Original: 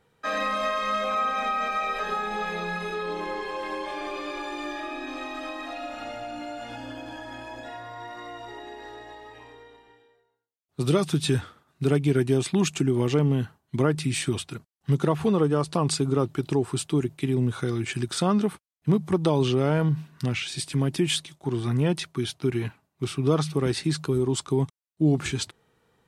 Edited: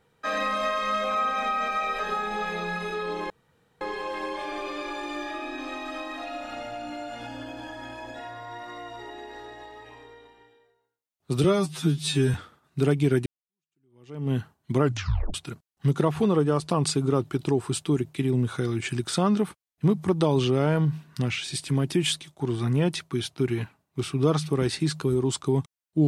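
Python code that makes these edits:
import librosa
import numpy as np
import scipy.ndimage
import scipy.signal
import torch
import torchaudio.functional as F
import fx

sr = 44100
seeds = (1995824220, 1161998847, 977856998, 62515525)

y = fx.edit(x, sr, fx.insert_room_tone(at_s=3.3, length_s=0.51),
    fx.stretch_span(start_s=10.93, length_s=0.45, factor=2.0),
    fx.fade_in_span(start_s=12.3, length_s=1.06, curve='exp'),
    fx.tape_stop(start_s=13.86, length_s=0.52), tone=tone)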